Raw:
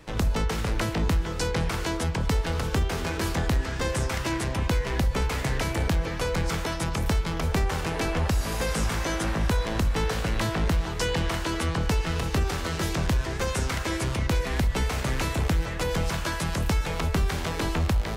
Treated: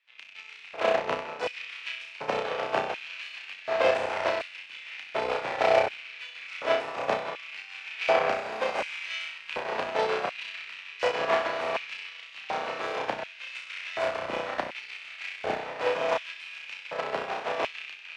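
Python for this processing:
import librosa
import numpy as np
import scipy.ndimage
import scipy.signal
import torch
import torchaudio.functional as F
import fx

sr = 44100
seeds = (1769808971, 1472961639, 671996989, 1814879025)

p1 = fx.rattle_buzz(x, sr, strikes_db=-33.0, level_db=-24.0)
p2 = scipy.signal.sosfilt(scipy.signal.butter(2, 5400.0, 'lowpass', fs=sr, output='sos'), p1)
p3 = fx.bass_treble(p2, sr, bass_db=-3, treble_db=-10)
p4 = p3 + fx.room_flutter(p3, sr, wall_m=5.5, rt60_s=1.1, dry=0)
p5 = fx.tube_stage(p4, sr, drive_db=16.0, bias=0.8)
p6 = fx.low_shelf(p5, sr, hz=270.0, db=11.5)
p7 = fx.echo_diffused(p6, sr, ms=769, feedback_pct=62, wet_db=-9.0)
p8 = fx.filter_lfo_highpass(p7, sr, shape='square', hz=0.68, low_hz=630.0, high_hz=2500.0, q=2.3)
p9 = fx.upward_expand(p8, sr, threshold_db=-36.0, expansion=2.5)
y = F.gain(torch.from_numpy(p9), 5.0).numpy()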